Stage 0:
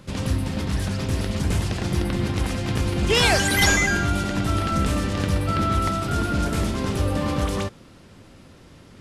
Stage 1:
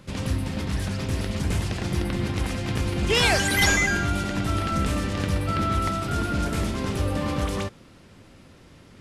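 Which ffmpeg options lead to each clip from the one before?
ffmpeg -i in.wav -af "equalizer=frequency=2200:width_type=o:width=0.77:gain=2,volume=-2.5dB" out.wav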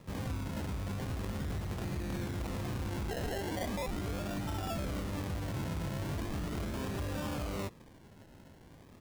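ffmpeg -i in.wav -af "acompressor=threshold=-24dB:ratio=6,aresample=8000,asoftclip=type=tanh:threshold=-25dB,aresample=44100,acrusher=samples=29:mix=1:aa=0.000001:lfo=1:lforange=17.4:lforate=0.39,volume=-5.5dB" out.wav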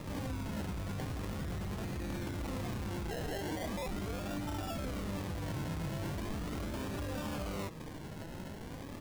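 ffmpeg -i in.wav -filter_complex "[0:a]asplit=2[link_01][link_02];[link_02]acompressor=threshold=-45dB:ratio=6,volume=2dB[link_03];[link_01][link_03]amix=inputs=2:normalize=0,alimiter=level_in=13.5dB:limit=-24dB:level=0:latency=1:release=38,volume=-13.5dB,flanger=delay=3.3:depth=3.3:regen=67:speed=0.44:shape=sinusoidal,volume=8.5dB" out.wav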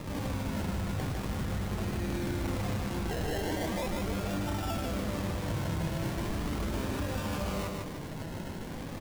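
ffmpeg -i in.wav -af "aecho=1:1:152|304|456|608|760:0.668|0.267|0.107|0.0428|0.0171,volume=3.5dB" out.wav

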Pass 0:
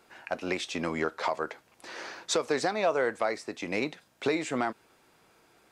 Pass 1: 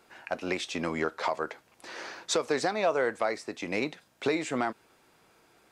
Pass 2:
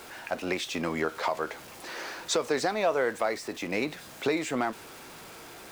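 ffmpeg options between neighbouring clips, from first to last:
ffmpeg -i in.wav -af anull out.wav
ffmpeg -i in.wav -af "aeval=exprs='val(0)+0.5*0.00841*sgn(val(0))':channel_layout=same" out.wav

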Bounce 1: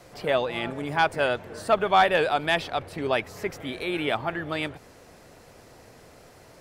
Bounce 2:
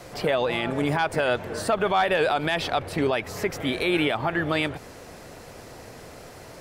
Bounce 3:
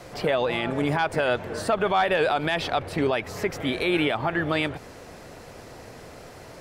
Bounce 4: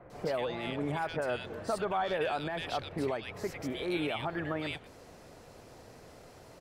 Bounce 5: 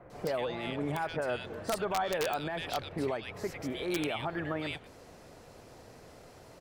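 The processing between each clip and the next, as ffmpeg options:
ffmpeg -i in.wav -af "alimiter=limit=-21dB:level=0:latency=1:release=103,volume=7.5dB" out.wav
ffmpeg -i in.wav -af "highshelf=frequency=7300:gain=-5" out.wav
ffmpeg -i in.wav -filter_complex "[0:a]acrossover=split=1900[link_01][link_02];[link_02]adelay=100[link_03];[link_01][link_03]amix=inputs=2:normalize=0,volume=-9dB" out.wav
ffmpeg -i in.wav -af "aeval=exprs='(mod(13.3*val(0)+1,2)-1)/13.3':channel_layout=same" out.wav

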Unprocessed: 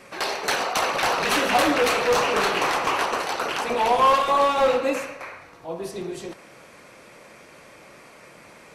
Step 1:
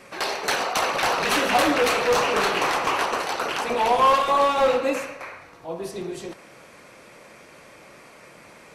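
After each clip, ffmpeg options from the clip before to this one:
ffmpeg -i in.wav -af anull out.wav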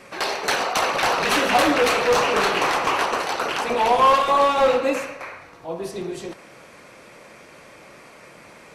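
ffmpeg -i in.wav -af "highshelf=frequency=9800:gain=-3.5,volume=2dB" out.wav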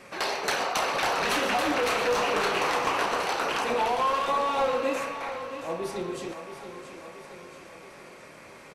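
ffmpeg -i in.wav -filter_complex "[0:a]acompressor=threshold=-20dB:ratio=6,asplit=2[link_01][link_02];[link_02]adelay=33,volume=-11.5dB[link_03];[link_01][link_03]amix=inputs=2:normalize=0,asplit=2[link_04][link_05];[link_05]aecho=0:1:676|1352|2028|2704|3380|4056:0.282|0.155|0.0853|0.0469|0.0258|0.0142[link_06];[link_04][link_06]amix=inputs=2:normalize=0,volume=-3.5dB" out.wav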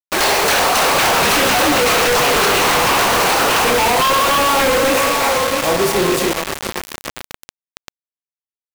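ffmpeg -i in.wav -filter_complex "[0:a]asplit=2[link_01][link_02];[link_02]alimiter=limit=-23dB:level=0:latency=1,volume=-1dB[link_03];[link_01][link_03]amix=inputs=2:normalize=0,acrusher=bits=4:mix=0:aa=0.000001,aeval=exprs='0.282*sin(PI/2*3.16*val(0)/0.282)':channel_layout=same" out.wav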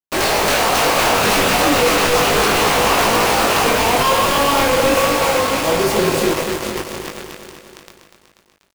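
ffmpeg -i in.wav -filter_complex "[0:a]asplit=2[link_01][link_02];[link_02]acrusher=samples=22:mix=1:aa=0.000001,volume=-7dB[link_03];[link_01][link_03]amix=inputs=2:normalize=0,flanger=delay=18.5:depth=2.6:speed=0.33,aecho=1:1:243|486|729|972|1215|1458|1701:0.376|0.222|0.131|0.0772|0.0455|0.0269|0.0159" out.wav

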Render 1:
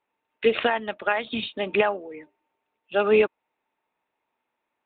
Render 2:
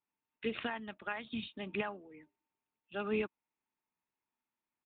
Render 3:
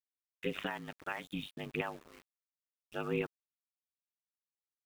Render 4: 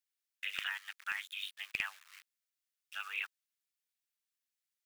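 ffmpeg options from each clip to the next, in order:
ffmpeg -i in.wav -af "firequalizer=gain_entry='entry(190,0);entry(520,-14);entry(1000,-7)':delay=0.05:min_phase=1,volume=-7dB" out.wav
ffmpeg -i in.wav -af "aeval=exprs='val(0)*gte(abs(val(0)),0.00282)':channel_layout=same,aeval=exprs='val(0)*sin(2*PI*49*n/s)':channel_layout=same,volume=2.5dB" out.wav
ffmpeg -i in.wav -af "highpass=frequency=1500:width=0.5412,highpass=frequency=1500:width=1.3066,aeval=exprs='clip(val(0),-1,0.0335)':channel_layout=same,volume=5.5dB" out.wav

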